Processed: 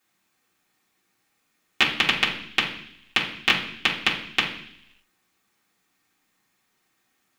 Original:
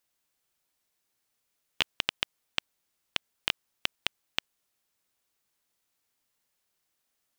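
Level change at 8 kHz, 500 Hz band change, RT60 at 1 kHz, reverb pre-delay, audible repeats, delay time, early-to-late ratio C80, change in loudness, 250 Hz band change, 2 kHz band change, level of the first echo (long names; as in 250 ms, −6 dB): +6.5 dB, +10.0 dB, 0.65 s, 3 ms, no echo audible, no echo audible, 11.5 dB, +10.5 dB, +16.0 dB, +13.5 dB, no echo audible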